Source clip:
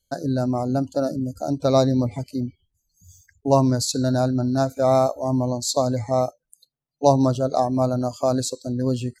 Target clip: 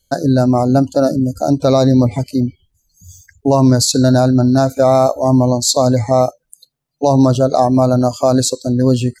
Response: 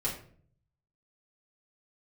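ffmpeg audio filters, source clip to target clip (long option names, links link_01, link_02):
-af "alimiter=level_in=11.5dB:limit=-1dB:release=50:level=0:latency=1,volume=-1dB"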